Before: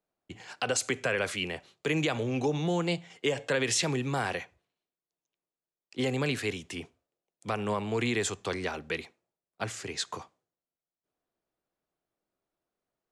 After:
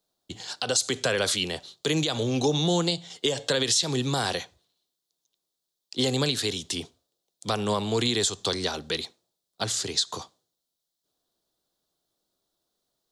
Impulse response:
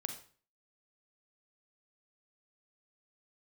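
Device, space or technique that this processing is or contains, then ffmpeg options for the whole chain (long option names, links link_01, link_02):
over-bright horn tweeter: -af "highshelf=frequency=3000:width_type=q:width=3:gain=7.5,alimiter=limit=-17dB:level=0:latency=1:release=181,volume=4.5dB"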